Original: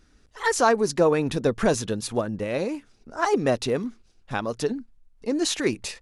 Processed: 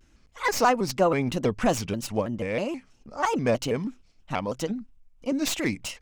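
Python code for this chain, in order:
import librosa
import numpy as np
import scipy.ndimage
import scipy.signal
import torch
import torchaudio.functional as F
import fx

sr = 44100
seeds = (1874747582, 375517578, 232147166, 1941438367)

y = fx.tracing_dist(x, sr, depth_ms=0.037)
y = fx.graphic_eq_31(y, sr, hz=(400, 1600, 2500, 4000, 10000), db=(-9, -6, 4, -6, -7))
y = fx.vibrato_shape(y, sr, shape='square', rate_hz=3.1, depth_cents=160.0)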